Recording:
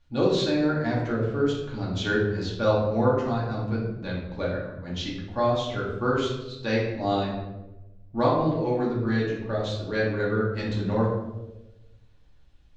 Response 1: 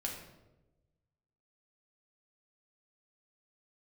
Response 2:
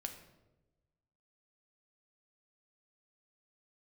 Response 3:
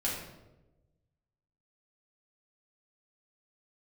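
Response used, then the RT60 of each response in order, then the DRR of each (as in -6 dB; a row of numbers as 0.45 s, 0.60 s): 3; 1.0 s, 1.1 s, 1.0 s; -1.5 dB, 4.5 dB, -6.5 dB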